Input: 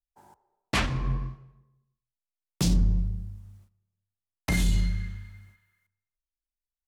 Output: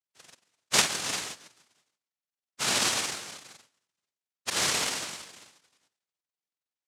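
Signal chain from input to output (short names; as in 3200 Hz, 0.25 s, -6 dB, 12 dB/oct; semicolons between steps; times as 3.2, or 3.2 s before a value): spectrum mirrored in octaves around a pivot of 500 Hz; 4.49–5.25 dispersion lows, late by 65 ms, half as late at 1600 Hz; noise vocoder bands 1; gain +1.5 dB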